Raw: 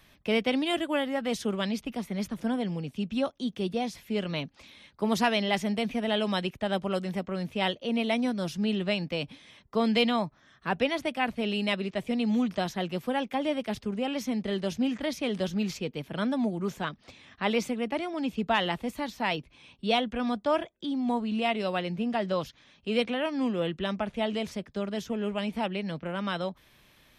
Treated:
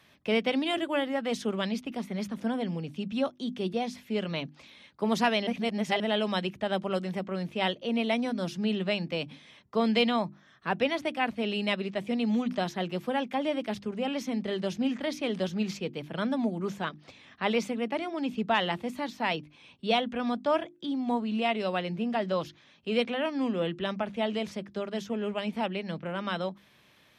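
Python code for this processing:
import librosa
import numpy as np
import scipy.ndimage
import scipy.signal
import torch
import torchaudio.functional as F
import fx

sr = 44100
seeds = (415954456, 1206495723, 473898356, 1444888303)

y = fx.edit(x, sr, fx.reverse_span(start_s=5.47, length_s=0.53), tone=tone)
y = scipy.signal.sosfilt(scipy.signal.butter(2, 100.0, 'highpass', fs=sr, output='sos'), y)
y = fx.high_shelf(y, sr, hz=9300.0, db=-9.0)
y = fx.hum_notches(y, sr, base_hz=50, count=7)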